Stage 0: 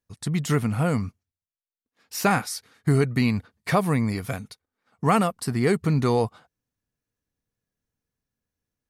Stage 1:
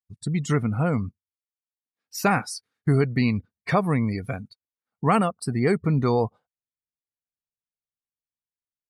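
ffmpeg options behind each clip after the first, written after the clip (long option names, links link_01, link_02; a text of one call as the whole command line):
ffmpeg -i in.wav -af "afftdn=noise_reduction=23:noise_floor=-36" out.wav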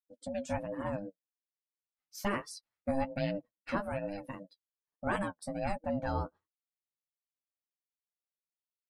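ffmpeg -i in.wav -af "aeval=exprs='val(0)*sin(2*PI*400*n/s)':channel_layout=same,flanger=delay=6.1:depth=6.6:regen=23:speed=1.2:shape=triangular,volume=-6dB" out.wav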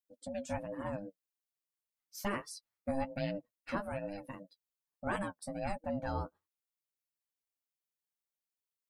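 ffmpeg -i in.wav -af "crystalizer=i=0.5:c=0,volume=-3dB" out.wav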